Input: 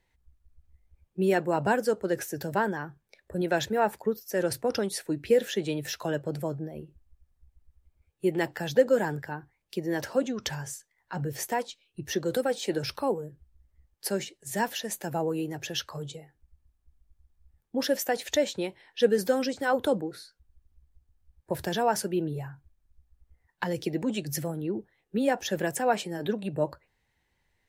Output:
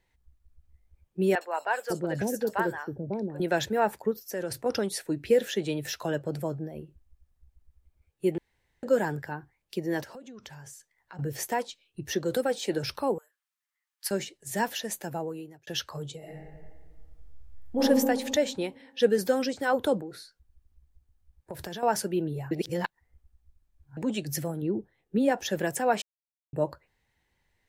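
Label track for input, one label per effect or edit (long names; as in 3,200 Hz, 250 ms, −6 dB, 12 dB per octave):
1.350000	3.400000	three-band delay without the direct sound mids, highs, lows 60/550 ms, splits 570/4,100 Hz
4.110000	4.660000	downward compressor 2 to 1, threshold −32 dBFS
8.380000	8.830000	fill with room tone
10.030000	11.190000	downward compressor, threshold −43 dBFS
13.180000	14.110000	high-pass filter 1,100 Hz 24 dB per octave
14.910000	15.670000	fade out
16.180000	17.810000	thrown reverb, RT60 1.7 s, DRR −9.5 dB
19.990000	21.830000	downward compressor, threshold −34 dBFS
22.510000	23.970000	reverse
24.620000	25.310000	tilt shelving filter lows +3.5 dB, about 640 Hz
26.020000	26.530000	silence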